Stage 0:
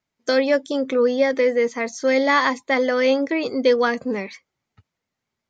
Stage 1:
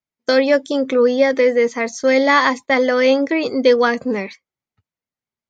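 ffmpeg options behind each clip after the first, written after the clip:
-af "agate=range=0.178:threshold=0.0178:ratio=16:detection=peak,volume=1.58"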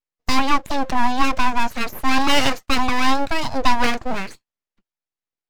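-af "aeval=exprs='abs(val(0))':c=same"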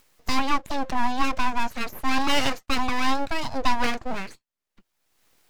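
-af "acompressor=mode=upward:threshold=0.0355:ratio=2.5,volume=0.531"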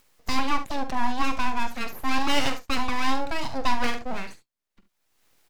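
-af "aecho=1:1:45|70:0.266|0.224,volume=0.794"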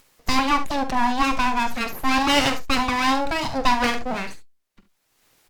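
-af "volume=2" -ar 48000 -c:a libopus -b:a 96k

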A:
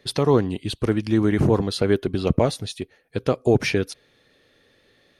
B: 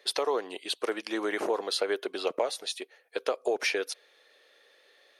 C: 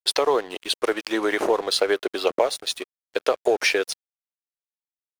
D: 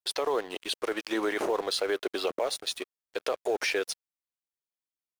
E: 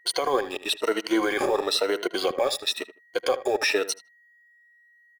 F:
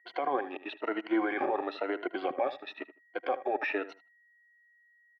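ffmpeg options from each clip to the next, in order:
-af "highpass=f=460:w=0.5412,highpass=f=460:w=1.3066,acompressor=threshold=0.0631:ratio=6"
-af "aeval=exprs='sgn(val(0))*max(abs(val(0))-0.00473,0)':c=same,volume=2.66"
-filter_complex "[0:a]asplit=2[s0][s1];[s1]acrusher=bits=4:mode=log:mix=0:aa=0.000001,volume=0.316[s2];[s0][s2]amix=inputs=2:normalize=0,alimiter=limit=0.224:level=0:latency=1:release=22,volume=0.501"
-filter_complex "[0:a]afftfilt=real='re*pow(10,15/40*sin(2*PI*(1.9*log(max(b,1)*sr/1024/100)/log(2)-(1)*(pts-256)/sr)))':imag='im*pow(10,15/40*sin(2*PI*(1.9*log(max(b,1)*sr/1024/100)/log(2)-(1)*(pts-256)/sr)))':win_size=1024:overlap=0.75,aeval=exprs='val(0)+0.00112*sin(2*PI*1900*n/s)':c=same,asplit=2[s0][s1];[s1]adelay=78,lowpass=f=2400:p=1,volume=0.2,asplit=2[s2][s3];[s3]adelay=78,lowpass=f=2400:p=1,volume=0.18[s4];[s0][s2][s4]amix=inputs=3:normalize=0,volume=1.41"
-af "highpass=f=160:w=0.5412,highpass=f=160:w=1.3066,equalizer=f=190:t=q:w=4:g=-7,equalizer=f=290:t=q:w=4:g=5,equalizer=f=460:t=q:w=4:g=-8,equalizer=f=750:t=q:w=4:g=6,equalizer=f=1100:t=q:w=4:g=-3,lowpass=f=2400:w=0.5412,lowpass=f=2400:w=1.3066,volume=0.531"

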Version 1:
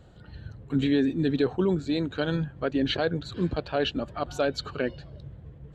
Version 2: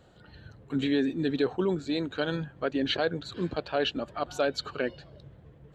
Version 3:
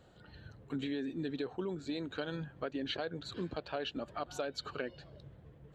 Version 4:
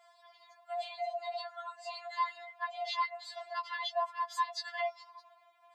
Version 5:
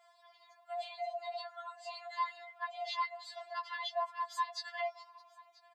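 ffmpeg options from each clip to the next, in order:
-af "lowshelf=f=170:g=-11.5"
-af "acompressor=threshold=0.0282:ratio=5,volume=0.668"
-af "afreqshift=440,afftfilt=real='re*4*eq(mod(b,16),0)':imag='im*4*eq(mod(b,16),0)':win_size=2048:overlap=0.75,volume=1.68"
-af "aecho=1:1:984:0.0708,volume=0.75"

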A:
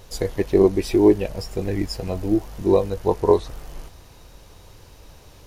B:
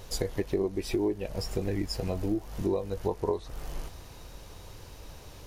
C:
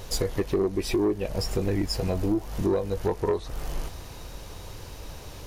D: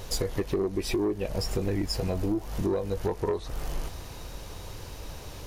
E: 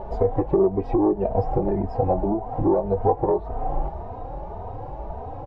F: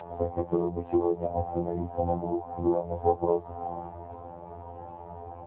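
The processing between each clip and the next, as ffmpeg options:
-af "acompressor=threshold=0.0447:ratio=5"
-af "asoftclip=type=tanh:threshold=0.075,volume=2"
-af "acompressor=threshold=0.0501:ratio=2"
-filter_complex "[0:a]lowpass=f=780:t=q:w=4.9,asplit=2[s0][s1];[s1]adelay=3,afreqshift=1.8[s2];[s0][s2]amix=inputs=2:normalize=1,volume=2.51"
-af "afftfilt=real='hypot(re,im)*cos(PI*b)':imag='0':win_size=2048:overlap=0.75,volume=0.891" -ar 8000 -c:a libopencore_amrnb -b:a 10200

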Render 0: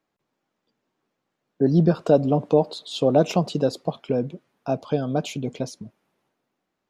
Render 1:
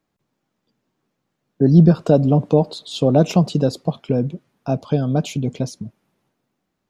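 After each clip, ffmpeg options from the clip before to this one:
-af "bass=f=250:g=9,treble=f=4000:g=3,volume=1.12"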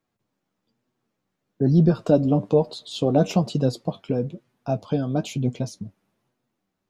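-af "flanger=delay=8:depth=2.7:regen=45:speed=1.1:shape=sinusoidal"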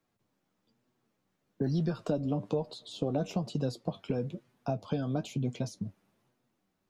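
-filter_complex "[0:a]acrossover=split=95|930[s0][s1][s2];[s0]acompressor=threshold=0.00447:ratio=4[s3];[s1]acompressor=threshold=0.0282:ratio=4[s4];[s2]acompressor=threshold=0.00501:ratio=4[s5];[s3][s4][s5]amix=inputs=3:normalize=0"

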